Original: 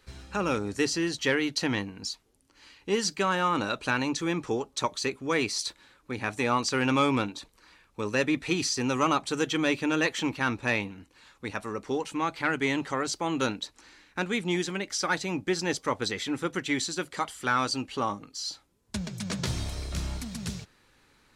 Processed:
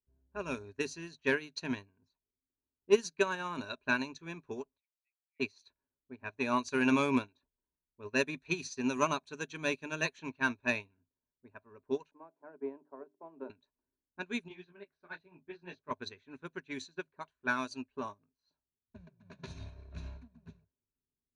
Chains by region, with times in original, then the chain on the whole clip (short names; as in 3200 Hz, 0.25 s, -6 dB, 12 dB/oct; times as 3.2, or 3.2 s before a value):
4.77–5.4 brick-wall FIR high-pass 1900 Hz + air absorption 380 m
12.11–13.5 Butterworth band-pass 490 Hz, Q 0.83 + notches 50/100/150/200/250/300/350/400 Hz + three-band squash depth 40%
14.48–15.91 resonant high shelf 6000 Hz -13 dB, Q 1.5 + detuned doubles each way 25 cents
whole clip: low-pass opened by the level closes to 330 Hz, open at -23 dBFS; ripple EQ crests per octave 1.5, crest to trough 11 dB; upward expander 2.5:1, over -38 dBFS